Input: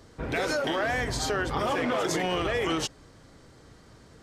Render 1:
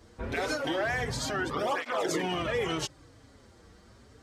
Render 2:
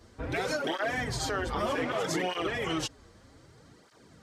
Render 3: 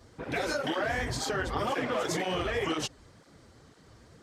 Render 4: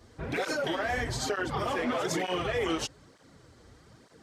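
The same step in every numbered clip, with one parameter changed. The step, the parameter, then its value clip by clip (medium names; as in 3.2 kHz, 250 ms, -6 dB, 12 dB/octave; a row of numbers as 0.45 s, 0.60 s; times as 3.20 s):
cancelling through-zero flanger, nulls at: 0.27 Hz, 0.64 Hz, 2 Hz, 1.1 Hz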